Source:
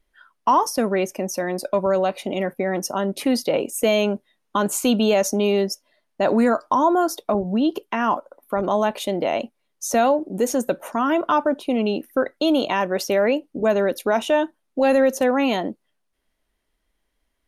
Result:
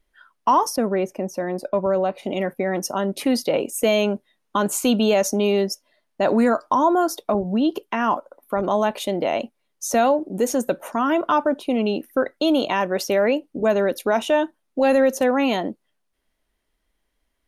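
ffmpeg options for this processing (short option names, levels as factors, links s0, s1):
-filter_complex "[0:a]asettb=1/sr,asplit=3[s0][s1][s2];[s0]atrim=end=0.764[s3];[s1]atrim=start=0.76:end=2.23,asetpts=PTS-STARTPTS,afade=t=in:d=0.004:c=qsin,afade=t=out:st=1.466:d=0.004:c=qsin,highshelf=f=2200:g=-11.5[s4];[s2]atrim=start=2.226[s5];[s3][s4]acrossfade=d=0.004:c1=hsin:c2=qsin[s6];[s6][s5]acrossfade=d=0.004:c1=qsin:c2=hsin"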